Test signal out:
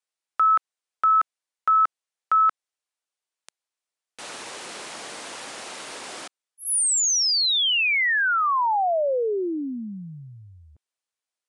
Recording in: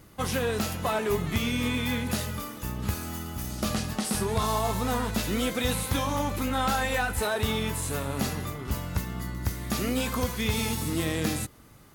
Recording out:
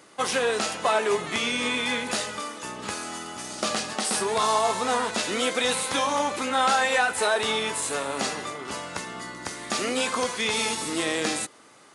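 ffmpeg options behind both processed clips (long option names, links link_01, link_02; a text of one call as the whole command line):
ffmpeg -i in.wav -af "highpass=410,aresample=22050,aresample=44100,volume=6dB" out.wav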